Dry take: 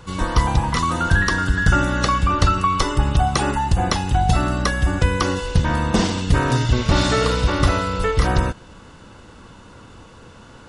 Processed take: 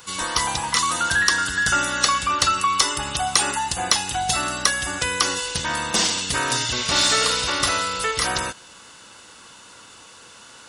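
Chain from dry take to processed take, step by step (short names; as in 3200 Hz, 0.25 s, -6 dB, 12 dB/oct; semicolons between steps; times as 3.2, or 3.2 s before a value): tilt +4.5 dB/oct; in parallel at -10.5 dB: soft clip -13.5 dBFS, distortion -12 dB; on the sum: gain -4 dB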